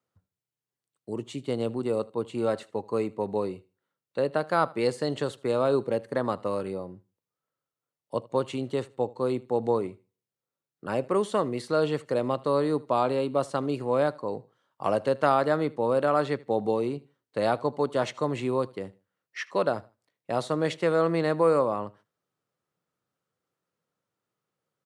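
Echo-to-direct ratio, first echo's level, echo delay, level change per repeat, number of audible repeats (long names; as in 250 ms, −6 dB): −22.0 dB, −22.5 dB, 78 ms, −11.5 dB, 2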